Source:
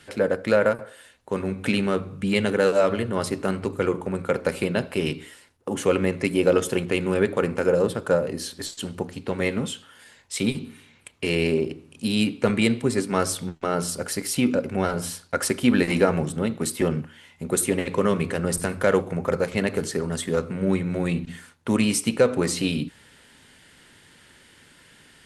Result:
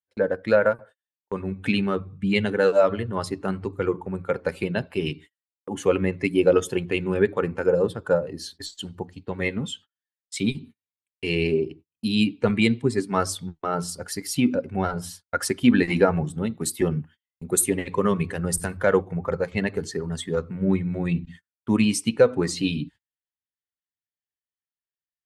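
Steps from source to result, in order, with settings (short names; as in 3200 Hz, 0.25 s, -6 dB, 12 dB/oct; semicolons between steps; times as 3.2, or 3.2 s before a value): per-bin expansion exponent 1.5; gate -46 dBFS, range -37 dB; high shelf 8300 Hz -6 dB, from 16.33 s +2 dB, from 18.77 s -9.5 dB; gain +3.5 dB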